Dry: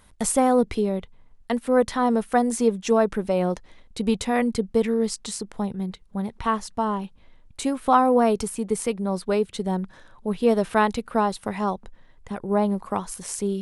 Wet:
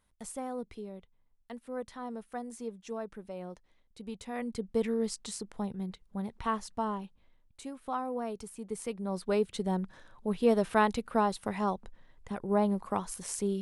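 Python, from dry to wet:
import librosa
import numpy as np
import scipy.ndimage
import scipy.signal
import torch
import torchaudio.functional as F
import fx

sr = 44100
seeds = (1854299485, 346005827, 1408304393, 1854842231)

y = fx.gain(x, sr, db=fx.line((4.11, -19.0), (4.81, -8.0), (6.84, -8.0), (7.63, -17.0), (8.38, -17.0), (9.39, -5.5)))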